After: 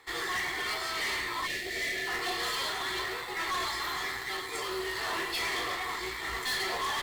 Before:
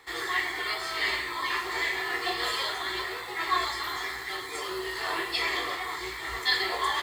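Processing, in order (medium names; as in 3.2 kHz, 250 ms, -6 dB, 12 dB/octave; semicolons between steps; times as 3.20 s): overload inside the chain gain 30 dB; spectral selection erased 1.47–2.07 s, 740–1700 Hz; Chebyshev shaper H 2 -11 dB, 7 -29 dB, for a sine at -25.5 dBFS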